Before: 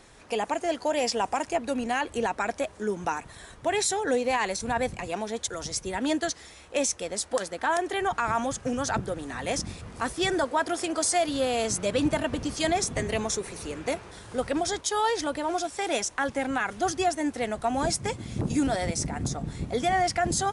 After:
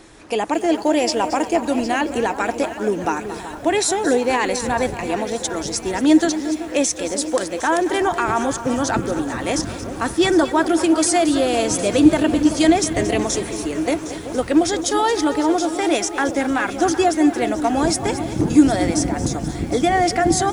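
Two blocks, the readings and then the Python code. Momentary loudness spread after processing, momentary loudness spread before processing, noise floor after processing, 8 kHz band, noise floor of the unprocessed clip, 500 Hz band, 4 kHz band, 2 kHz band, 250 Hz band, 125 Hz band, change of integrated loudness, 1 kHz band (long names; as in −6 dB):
8 LU, 7 LU, −32 dBFS, +6.5 dB, −50 dBFS, +8.5 dB, +6.5 dB, +6.5 dB, +13.5 dB, +6.5 dB, +9.0 dB, +7.0 dB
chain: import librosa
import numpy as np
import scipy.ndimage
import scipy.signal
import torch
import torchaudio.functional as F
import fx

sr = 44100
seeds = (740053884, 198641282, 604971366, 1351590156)

y = fx.peak_eq(x, sr, hz=320.0, db=11.0, octaves=0.35)
y = fx.echo_alternate(y, sr, ms=380, hz=1300.0, feedback_pct=73, wet_db=-11.0)
y = fx.echo_crushed(y, sr, ms=226, feedback_pct=35, bits=8, wet_db=-13)
y = y * 10.0 ** (6.0 / 20.0)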